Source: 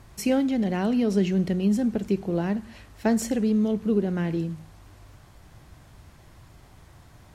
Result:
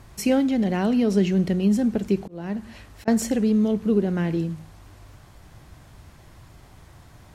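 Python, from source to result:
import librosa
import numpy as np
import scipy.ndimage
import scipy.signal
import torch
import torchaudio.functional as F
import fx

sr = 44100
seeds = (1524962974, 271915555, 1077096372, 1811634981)

y = fx.auto_swell(x, sr, attack_ms=414.0, at=(2.22, 3.08))
y = y * 10.0 ** (2.5 / 20.0)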